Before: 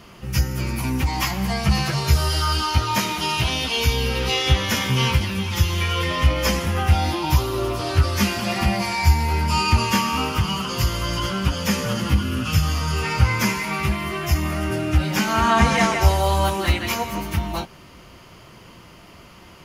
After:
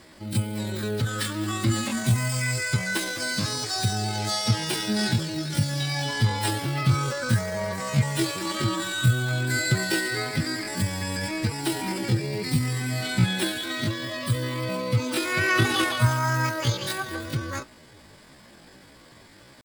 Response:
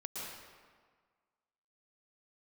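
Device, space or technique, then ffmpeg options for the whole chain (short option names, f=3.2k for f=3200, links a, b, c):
chipmunk voice: -af "asetrate=72056,aresample=44100,atempo=0.612027,volume=-5dB"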